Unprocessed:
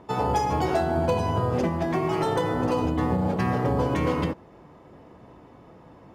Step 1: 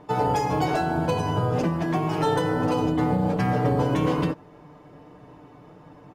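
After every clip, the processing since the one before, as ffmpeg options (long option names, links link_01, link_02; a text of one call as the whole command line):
ffmpeg -i in.wav -af "aecho=1:1:6.7:0.63" out.wav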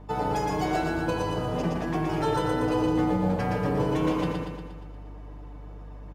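ffmpeg -i in.wav -af "aeval=exprs='val(0)+0.0112*(sin(2*PI*50*n/s)+sin(2*PI*2*50*n/s)/2+sin(2*PI*3*50*n/s)/3+sin(2*PI*4*50*n/s)/4+sin(2*PI*5*50*n/s)/5)':channel_layout=same,bandreject=frequency=60:width_type=h:width=6,bandreject=frequency=120:width_type=h:width=6,aecho=1:1:118|236|354|472|590|708|826|944:0.708|0.396|0.222|0.124|0.0696|0.039|0.0218|0.0122,volume=-4.5dB" out.wav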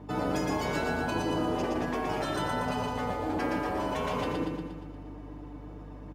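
ffmpeg -i in.wav -af "highpass=60,afftfilt=real='re*lt(hypot(re,im),0.2)':imag='im*lt(hypot(re,im),0.2)':win_size=1024:overlap=0.75,equalizer=frequency=290:width_type=o:width=0.66:gain=7.5" out.wav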